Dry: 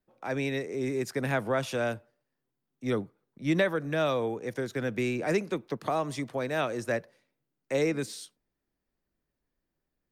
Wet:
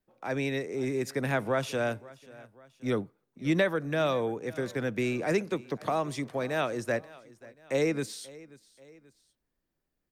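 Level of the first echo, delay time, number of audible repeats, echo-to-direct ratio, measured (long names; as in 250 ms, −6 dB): −21.0 dB, 534 ms, 2, −20.0 dB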